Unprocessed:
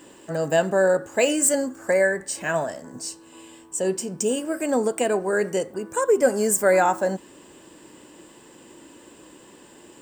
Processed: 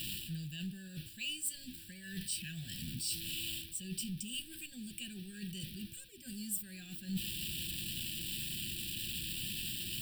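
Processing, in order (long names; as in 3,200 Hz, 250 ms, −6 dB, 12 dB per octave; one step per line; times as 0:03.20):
converter with a step at zero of −33.5 dBFS
reversed playback
downward compressor 6 to 1, threshold −32 dBFS, peak gain reduction 18 dB
reversed playback
inverse Chebyshev band-stop filter 430–1,400 Hz, stop band 40 dB
phaser with its sweep stopped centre 1,400 Hz, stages 8
level +5.5 dB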